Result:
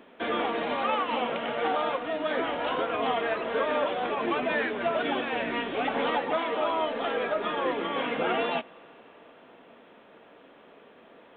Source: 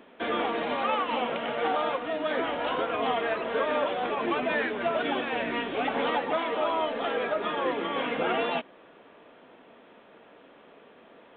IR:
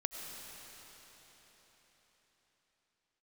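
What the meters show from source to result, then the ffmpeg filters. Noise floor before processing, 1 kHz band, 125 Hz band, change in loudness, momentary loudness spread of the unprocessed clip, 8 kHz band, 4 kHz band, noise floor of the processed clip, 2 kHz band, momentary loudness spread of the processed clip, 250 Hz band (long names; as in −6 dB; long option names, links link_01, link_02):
−54 dBFS, 0.0 dB, 0.0 dB, 0.0 dB, 3 LU, can't be measured, 0.0 dB, −54 dBFS, 0.0 dB, 3 LU, 0.0 dB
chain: -filter_complex "[0:a]asplit=2[link_01][link_02];[1:a]atrim=start_sample=2205,adelay=22[link_03];[link_02][link_03]afir=irnorm=-1:irlink=0,volume=-21.5dB[link_04];[link_01][link_04]amix=inputs=2:normalize=0"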